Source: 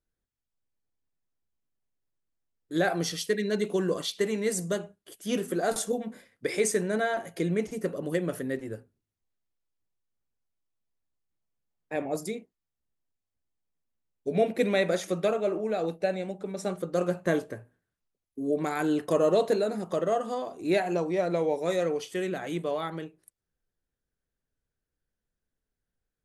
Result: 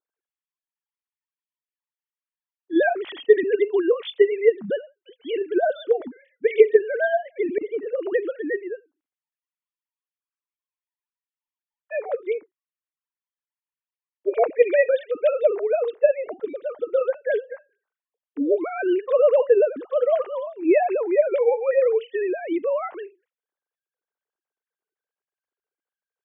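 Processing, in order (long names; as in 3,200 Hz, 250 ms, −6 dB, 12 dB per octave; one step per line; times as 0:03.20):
three sine waves on the formant tracks
0:07.58–0:08.13: compressor whose output falls as the input rises −32 dBFS, ratio −0.5
level +7 dB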